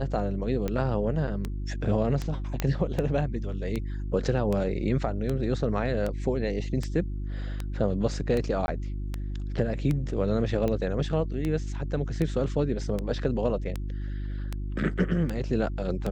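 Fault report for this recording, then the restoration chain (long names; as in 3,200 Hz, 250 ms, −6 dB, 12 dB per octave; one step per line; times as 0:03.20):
mains hum 50 Hz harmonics 7 −32 dBFS
scratch tick 78 rpm −17 dBFS
0:02.60: click −12 dBFS
0:08.66–0:08.68: drop-out 21 ms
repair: click removal
hum removal 50 Hz, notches 7
repair the gap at 0:08.66, 21 ms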